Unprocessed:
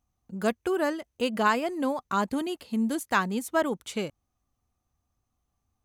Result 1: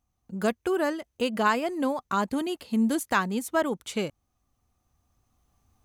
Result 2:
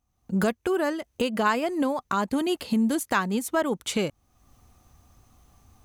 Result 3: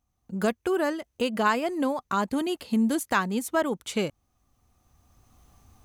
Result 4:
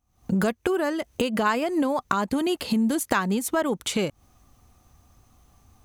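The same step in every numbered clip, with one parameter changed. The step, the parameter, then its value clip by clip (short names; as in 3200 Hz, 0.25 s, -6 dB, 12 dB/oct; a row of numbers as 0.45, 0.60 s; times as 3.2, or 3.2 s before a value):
recorder AGC, rising by: 5, 32, 12, 81 dB/s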